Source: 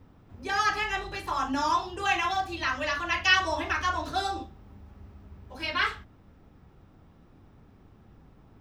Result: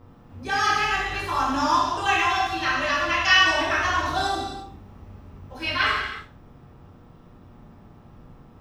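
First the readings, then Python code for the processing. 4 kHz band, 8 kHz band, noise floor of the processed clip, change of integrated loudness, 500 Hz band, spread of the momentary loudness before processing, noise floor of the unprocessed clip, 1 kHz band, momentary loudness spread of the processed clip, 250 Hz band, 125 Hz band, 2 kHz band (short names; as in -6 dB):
+6.5 dB, +5.5 dB, -50 dBFS, +5.5 dB, +5.5 dB, 12 LU, -57 dBFS, +5.5 dB, 14 LU, +5.0 dB, +5.5 dB, +6.0 dB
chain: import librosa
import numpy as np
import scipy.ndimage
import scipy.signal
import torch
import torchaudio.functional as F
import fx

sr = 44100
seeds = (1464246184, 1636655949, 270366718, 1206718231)

y = fx.rev_gated(x, sr, seeds[0], gate_ms=380, shape='falling', drr_db=-4.5)
y = fx.dmg_buzz(y, sr, base_hz=120.0, harmonics=11, level_db=-57.0, tilt_db=-3, odd_only=False)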